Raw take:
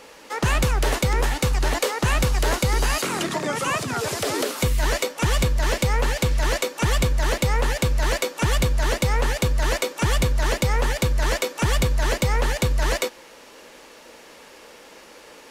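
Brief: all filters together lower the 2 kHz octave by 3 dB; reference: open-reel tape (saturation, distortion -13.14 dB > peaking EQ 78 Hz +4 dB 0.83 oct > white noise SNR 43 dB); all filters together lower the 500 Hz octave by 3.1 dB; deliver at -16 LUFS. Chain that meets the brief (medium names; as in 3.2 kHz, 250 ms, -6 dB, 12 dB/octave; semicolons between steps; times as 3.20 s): peaking EQ 500 Hz -3.5 dB; peaking EQ 2 kHz -3.5 dB; saturation -21 dBFS; peaking EQ 78 Hz +4 dB 0.83 oct; white noise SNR 43 dB; trim +11 dB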